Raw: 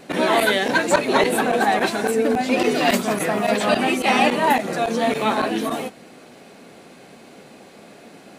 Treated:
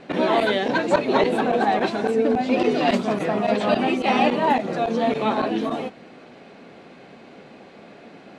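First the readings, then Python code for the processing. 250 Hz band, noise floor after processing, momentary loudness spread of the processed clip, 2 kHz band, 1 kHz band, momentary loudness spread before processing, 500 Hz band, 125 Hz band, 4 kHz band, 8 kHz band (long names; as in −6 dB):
0.0 dB, −46 dBFS, 4 LU, −5.5 dB, −2.0 dB, 5 LU, −0.5 dB, 0.0 dB, −5.0 dB, below −10 dB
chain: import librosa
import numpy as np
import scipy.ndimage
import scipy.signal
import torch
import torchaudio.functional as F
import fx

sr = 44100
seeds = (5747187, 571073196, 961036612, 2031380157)

y = scipy.signal.sosfilt(scipy.signal.butter(2, 3600.0, 'lowpass', fs=sr, output='sos'), x)
y = fx.dynamic_eq(y, sr, hz=1800.0, q=0.97, threshold_db=-35.0, ratio=4.0, max_db=-6)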